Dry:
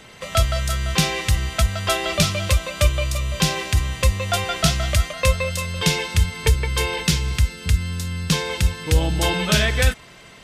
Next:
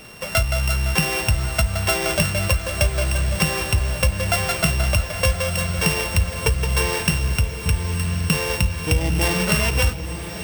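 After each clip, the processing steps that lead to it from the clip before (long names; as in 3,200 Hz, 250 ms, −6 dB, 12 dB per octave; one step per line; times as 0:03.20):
samples sorted by size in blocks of 16 samples
downward compressor, threshold −18 dBFS, peak gain reduction 7.5 dB
feedback delay with all-pass diffusion 1,048 ms, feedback 48%, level −10 dB
level +3 dB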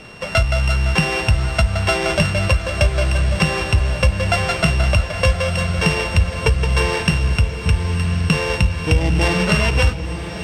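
high-frequency loss of the air 83 metres
level +4 dB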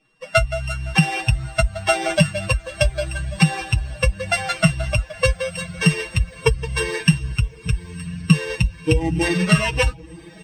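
spectral dynamics exaggerated over time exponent 2
comb filter 6.3 ms, depth 81%
level +2 dB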